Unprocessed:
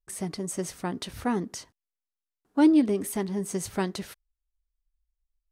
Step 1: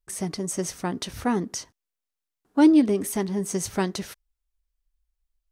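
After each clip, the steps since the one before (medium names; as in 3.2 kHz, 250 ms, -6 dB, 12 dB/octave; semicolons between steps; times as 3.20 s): dynamic bell 5.9 kHz, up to +6 dB, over -56 dBFS, Q 4; trim +3 dB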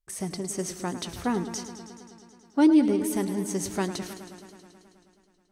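modulated delay 107 ms, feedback 77%, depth 84 cents, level -12 dB; trim -3 dB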